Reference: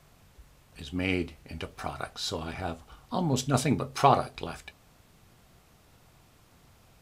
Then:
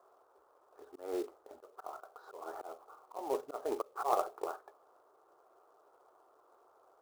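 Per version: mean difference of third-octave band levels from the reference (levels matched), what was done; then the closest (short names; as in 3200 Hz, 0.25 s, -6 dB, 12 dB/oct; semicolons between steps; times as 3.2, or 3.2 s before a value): 12.0 dB: elliptic band-pass 380–1300 Hz, stop band 40 dB; short-mantissa float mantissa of 2-bit; auto swell 0.218 s; gain +1 dB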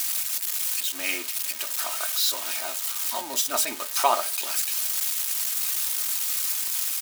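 17.0 dB: switching spikes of -21 dBFS; HPF 770 Hz 12 dB/oct; comb 3.2 ms, depth 65%; gain +2 dB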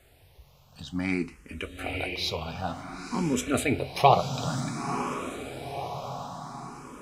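6.5 dB: diffused feedback echo 0.996 s, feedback 50%, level -6 dB; dynamic EQ 2400 Hz, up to +5 dB, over -51 dBFS, Q 3.2; endless phaser +0.55 Hz; gain +3.5 dB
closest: third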